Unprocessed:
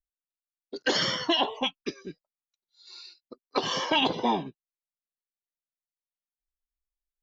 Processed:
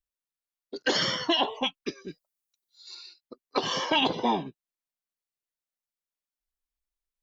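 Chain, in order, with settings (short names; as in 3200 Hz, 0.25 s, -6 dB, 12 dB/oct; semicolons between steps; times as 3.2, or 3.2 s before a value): 2.08–2.95 high shelf 5900 Hz +11.5 dB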